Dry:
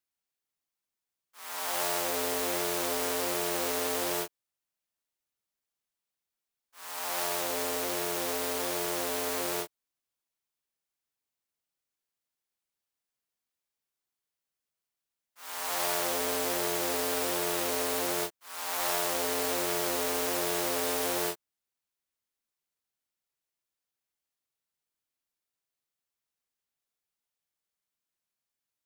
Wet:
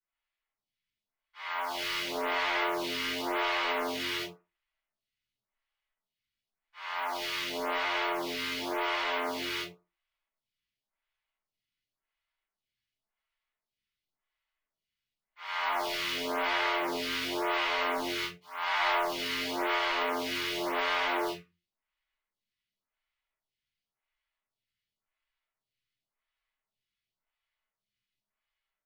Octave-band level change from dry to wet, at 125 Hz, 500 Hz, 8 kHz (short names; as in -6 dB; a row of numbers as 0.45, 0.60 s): -6.0, -3.0, -14.0 dB